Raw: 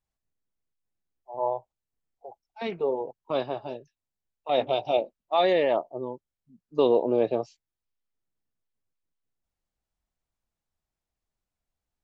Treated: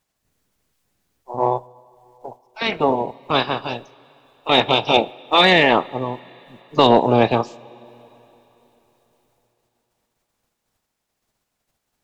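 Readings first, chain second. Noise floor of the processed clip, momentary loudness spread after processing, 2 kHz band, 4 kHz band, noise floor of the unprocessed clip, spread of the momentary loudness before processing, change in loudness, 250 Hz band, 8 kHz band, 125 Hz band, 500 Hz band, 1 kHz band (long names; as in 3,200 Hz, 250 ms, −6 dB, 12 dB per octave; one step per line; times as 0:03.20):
−77 dBFS, 17 LU, +18.0 dB, +18.0 dB, below −85 dBFS, 17 LU, +9.0 dB, +10.5 dB, can't be measured, +17.0 dB, +5.0 dB, +12.0 dB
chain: ceiling on every frequency bin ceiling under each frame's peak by 19 dB
coupled-rooms reverb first 0.31 s, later 4 s, from −18 dB, DRR 16 dB
sine wavefolder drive 7 dB, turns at −1 dBFS
level −1.5 dB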